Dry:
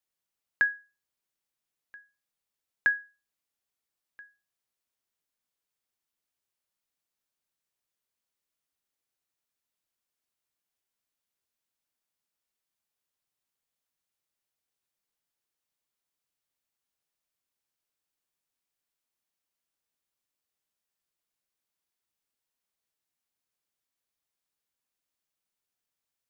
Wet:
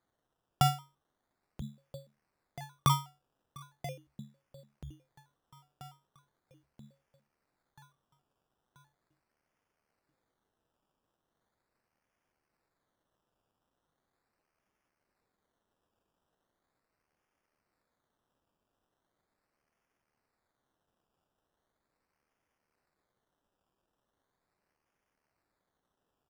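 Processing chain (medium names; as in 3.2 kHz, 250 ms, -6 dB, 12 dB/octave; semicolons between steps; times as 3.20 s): inverse Chebyshev high-pass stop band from 480 Hz, stop band 40 dB; in parallel at -2 dB: compressor with a negative ratio -27 dBFS, ratio -0.5; on the sum: ring modulator 1.8 kHz; on a send: feedback delay 983 ms, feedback 59%, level -14.5 dB; on the sum: decimation with a swept rate 16×, swing 60% 0.39 Hz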